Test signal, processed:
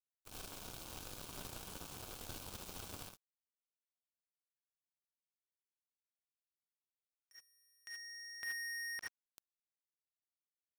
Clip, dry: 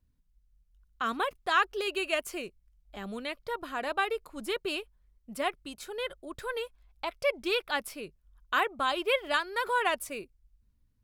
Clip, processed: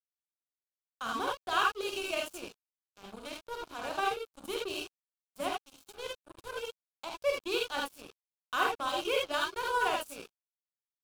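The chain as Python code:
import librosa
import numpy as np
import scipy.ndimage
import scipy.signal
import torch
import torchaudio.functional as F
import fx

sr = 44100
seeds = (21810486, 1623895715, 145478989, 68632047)

y = fx.rev_gated(x, sr, seeds[0], gate_ms=100, shape='rising', drr_db=-1.5)
y = np.sign(y) * np.maximum(np.abs(y) - 10.0 ** (-36.0 / 20.0), 0.0)
y = fx.peak_eq(y, sr, hz=1900.0, db=-12.0, octaves=0.36)
y = y * librosa.db_to_amplitude(-3.0)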